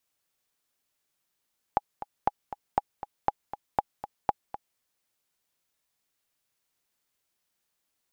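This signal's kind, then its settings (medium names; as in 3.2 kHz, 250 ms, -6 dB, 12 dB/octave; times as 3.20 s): metronome 238 bpm, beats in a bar 2, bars 6, 825 Hz, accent 13 dB -9 dBFS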